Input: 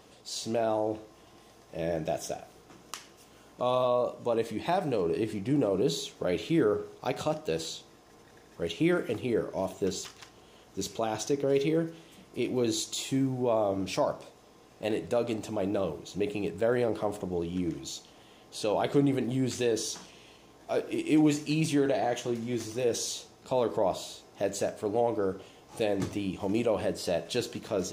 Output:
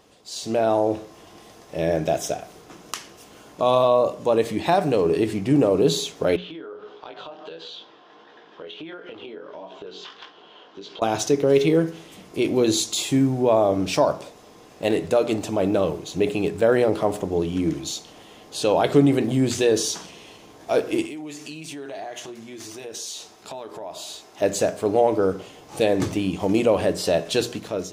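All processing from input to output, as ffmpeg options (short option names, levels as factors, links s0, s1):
-filter_complex "[0:a]asettb=1/sr,asplit=3[s0][s1][s2];[s0]atrim=end=6.364[s3];[s1]atrim=start=6.36:end=11.02,asetpts=PTS-STARTPTS,afade=t=in:d=0.004:c=qsin,afade=t=out:st=4.656:d=0.004:c=qsin,highpass=290,equalizer=f=1000:t=q:w=4:g=5,equalizer=f=1500:t=q:w=4:g=5,equalizer=f=2200:t=q:w=4:g=-3,equalizer=f=3200:t=q:w=4:g=8,lowpass=f=4200:w=0.5412,lowpass=f=4200:w=1.3066,flanger=delay=16.5:depth=5.4:speed=1.5,acompressor=threshold=0.00708:ratio=10:attack=3.2:release=140:knee=1:detection=peak[s4];[s2]atrim=start=11.016[s5];[s3][s4]acrossfade=d=0.004:c1=hsin:c2=qsin[s6];[s6][s5]acrossfade=d=0.004:c1=qsin:c2=hsin,asettb=1/sr,asplit=3[s7][s8][s9];[s7]atrim=end=21.064[s10];[s8]atrim=start=21.06:end=24.42,asetpts=PTS-STARTPTS,afade=t=in:d=0.004:c=qsin,afade=t=out:st=3.356:d=0.004:c=qsin,bandreject=f=510:w=6.5,acompressor=threshold=0.01:ratio=4:attack=3.2:release=140:knee=1:detection=peak,lowshelf=f=270:g=-11.5[s11];[s9]atrim=start=24.416[s12];[s10][s11]acrossfade=d=0.004:c1=hsin:c2=qsin[s13];[s13][s12]acrossfade=d=0.004:c1=qsin:c2=hsin,bandreject=f=60:t=h:w=6,bandreject=f=120:t=h:w=6,bandreject=f=180:t=h:w=6,bandreject=f=240:t=h:w=6,dynaudnorm=f=190:g=5:m=2.82"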